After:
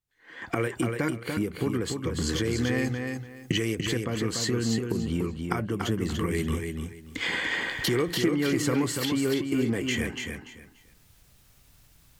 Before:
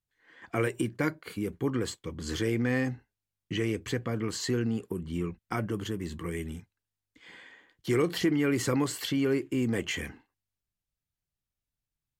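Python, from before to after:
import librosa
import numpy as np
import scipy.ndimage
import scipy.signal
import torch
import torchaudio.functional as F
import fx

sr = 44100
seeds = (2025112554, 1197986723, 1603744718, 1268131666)

y = fx.recorder_agc(x, sr, target_db=-19.5, rise_db_per_s=31.0, max_gain_db=30)
y = fx.high_shelf(y, sr, hz=4200.0, db=11.0, at=(2.78, 3.75))
y = fx.echo_feedback(y, sr, ms=290, feedback_pct=23, wet_db=-5.0)
y = fx.end_taper(y, sr, db_per_s=200.0)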